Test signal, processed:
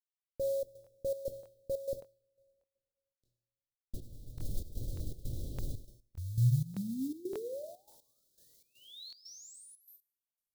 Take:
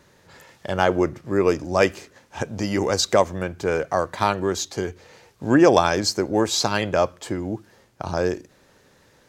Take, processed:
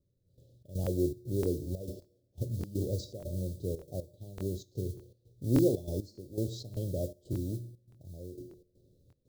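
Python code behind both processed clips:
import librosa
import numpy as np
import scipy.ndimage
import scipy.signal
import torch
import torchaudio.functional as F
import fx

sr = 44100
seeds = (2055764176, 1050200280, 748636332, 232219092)

y = fx.riaa(x, sr, side='playback')
y = fx.rev_double_slope(y, sr, seeds[0], early_s=0.41, late_s=1.8, knee_db=-21, drr_db=8.0)
y = fx.mod_noise(y, sr, seeds[1], snr_db=20)
y = fx.comb_fb(y, sr, f0_hz=120.0, decay_s=0.75, harmonics='odd', damping=0.0, mix_pct=70)
y = fx.dynamic_eq(y, sr, hz=1800.0, q=1.7, threshold_db=-48.0, ratio=4.0, max_db=-7)
y = fx.step_gate(y, sr, bpm=120, pattern='...xx.xxx.xxxx.x', floor_db=-12.0, edge_ms=4.5)
y = scipy.signal.sosfilt(scipy.signal.ellip(3, 1.0, 40, [560.0, 3800.0], 'bandstop', fs=sr, output='sos'), y)
y = fx.buffer_crackle(y, sr, first_s=0.82, period_s=0.59, block=1024, kind='repeat')
y = y * 10.0 ** (-6.5 / 20.0)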